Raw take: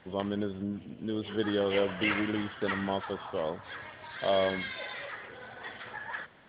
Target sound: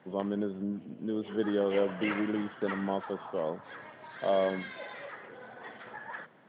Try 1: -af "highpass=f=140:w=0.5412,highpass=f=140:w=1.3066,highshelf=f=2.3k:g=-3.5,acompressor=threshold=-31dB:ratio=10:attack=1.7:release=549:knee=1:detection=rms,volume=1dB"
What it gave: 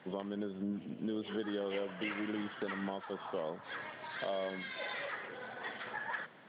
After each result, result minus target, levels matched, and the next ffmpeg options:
compressor: peak gain reduction +12 dB; 4000 Hz band +7.5 dB
-af "highpass=f=140:w=0.5412,highpass=f=140:w=1.3066,highshelf=f=2.3k:g=-3.5,volume=1dB"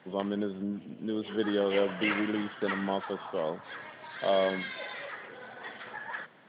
4000 Hz band +6.5 dB
-af "highpass=f=140:w=0.5412,highpass=f=140:w=1.3066,highshelf=f=2.3k:g=-15,volume=1dB"

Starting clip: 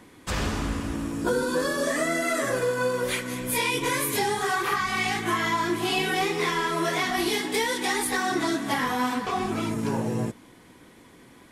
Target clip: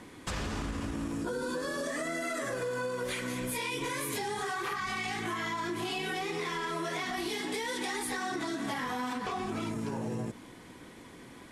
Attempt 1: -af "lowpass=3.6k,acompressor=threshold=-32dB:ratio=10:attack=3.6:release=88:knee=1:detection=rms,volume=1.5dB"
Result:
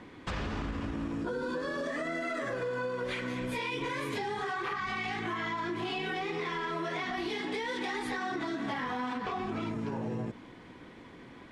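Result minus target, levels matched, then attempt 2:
8000 Hz band -12.5 dB
-af "lowpass=11k,acompressor=threshold=-32dB:ratio=10:attack=3.6:release=88:knee=1:detection=rms,volume=1.5dB"

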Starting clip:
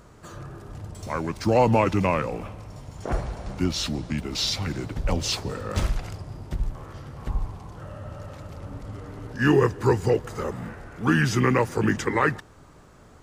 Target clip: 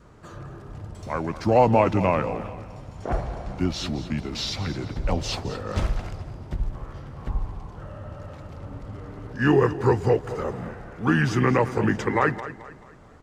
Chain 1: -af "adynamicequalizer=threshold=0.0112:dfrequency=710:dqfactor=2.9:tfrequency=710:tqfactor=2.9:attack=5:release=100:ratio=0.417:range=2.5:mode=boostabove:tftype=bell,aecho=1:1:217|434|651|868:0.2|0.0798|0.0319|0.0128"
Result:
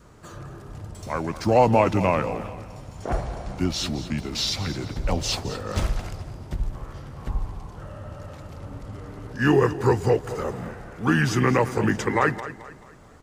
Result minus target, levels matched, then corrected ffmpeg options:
4000 Hz band +3.5 dB
-af "adynamicequalizer=threshold=0.0112:dfrequency=710:dqfactor=2.9:tfrequency=710:tqfactor=2.9:attack=5:release=100:ratio=0.417:range=2.5:mode=boostabove:tftype=bell,lowpass=f=3.4k:p=1,aecho=1:1:217|434|651|868:0.2|0.0798|0.0319|0.0128"

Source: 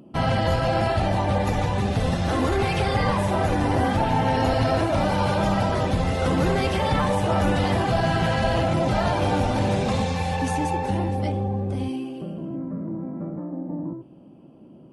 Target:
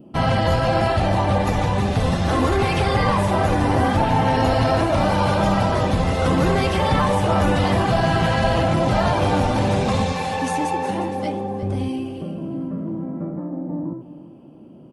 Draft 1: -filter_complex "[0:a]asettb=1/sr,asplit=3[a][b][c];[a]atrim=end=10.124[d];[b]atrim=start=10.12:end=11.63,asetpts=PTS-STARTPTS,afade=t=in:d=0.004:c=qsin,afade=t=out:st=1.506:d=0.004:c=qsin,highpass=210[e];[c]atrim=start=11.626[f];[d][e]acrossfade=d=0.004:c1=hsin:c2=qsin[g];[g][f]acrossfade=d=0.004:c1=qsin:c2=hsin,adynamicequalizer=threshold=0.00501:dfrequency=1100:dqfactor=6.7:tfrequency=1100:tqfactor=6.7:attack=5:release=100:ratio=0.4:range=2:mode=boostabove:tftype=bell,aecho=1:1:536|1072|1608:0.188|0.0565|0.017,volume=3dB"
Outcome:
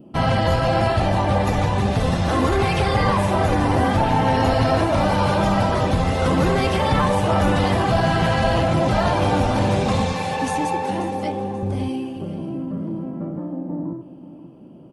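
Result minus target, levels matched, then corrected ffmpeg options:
echo 0.178 s late
-filter_complex "[0:a]asettb=1/sr,asplit=3[a][b][c];[a]atrim=end=10.124[d];[b]atrim=start=10.12:end=11.63,asetpts=PTS-STARTPTS,afade=t=in:d=0.004:c=qsin,afade=t=out:st=1.506:d=0.004:c=qsin,highpass=210[e];[c]atrim=start=11.626[f];[d][e]acrossfade=d=0.004:c1=hsin:c2=qsin[g];[g][f]acrossfade=d=0.004:c1=qsin:c2=hsin,adynamicequalizer=threshold=0.00501:dfrequency=1100:dqfactor=6.7:tfrequency=1100:tqfactor=6.7:attack=5:release=100:ratio=0.4:range=2:mode=boostabove:tftype=bell,aecho=1:1:358|716|1074:0.188|0.0565|0.017,volume=3dB"

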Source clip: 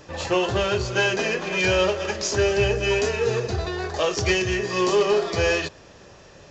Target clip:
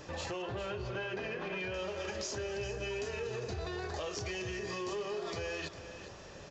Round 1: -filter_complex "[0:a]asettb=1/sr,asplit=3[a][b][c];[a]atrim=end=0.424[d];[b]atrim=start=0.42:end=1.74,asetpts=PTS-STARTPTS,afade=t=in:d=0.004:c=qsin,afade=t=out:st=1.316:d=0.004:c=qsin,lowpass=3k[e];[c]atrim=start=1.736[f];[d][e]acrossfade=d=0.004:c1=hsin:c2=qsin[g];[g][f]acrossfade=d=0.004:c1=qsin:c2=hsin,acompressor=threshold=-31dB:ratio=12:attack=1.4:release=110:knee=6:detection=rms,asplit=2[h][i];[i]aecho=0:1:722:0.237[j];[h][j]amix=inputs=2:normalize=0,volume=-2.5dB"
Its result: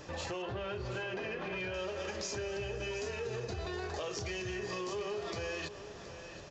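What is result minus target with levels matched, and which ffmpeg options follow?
echo 0.319 s late
-filter_complex "[0:a]asettb=1/sr,asplit=3[a][b][c];[a]atrim=end=0.424[d];[b]atrim=start=0.42:end=1.74,asetpts=PTS-STARTPTS,afade=t=in:d=0.004:c=qsin,afade=t=out:st=1.316:d=0.004:c=qsin,lowpass=3k[e];[c]atrim=start=1.736[f];[d][e]acrossfade=d=0.004:c1=hsin:c2=qsin[g];[g][f]acrossfade=d=0.004:c1=qsin:c2=hsin,acompressor=threshold=-31dB:ratio=12:attack=1.4:release=110:knee=6:detection=rms,asplit=2[h][i];[i]aecho=0:1:403:0.237[j];[h][j]amix=inputs=2:normalize=0,volume=-2.5dB"

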